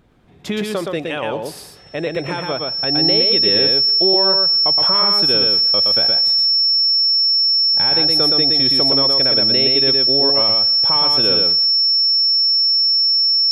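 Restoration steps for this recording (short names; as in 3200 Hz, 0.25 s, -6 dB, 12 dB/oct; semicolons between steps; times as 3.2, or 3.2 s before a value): notch 5400 Hz, Q 30; inverse comb 0.119 s -3.5 dB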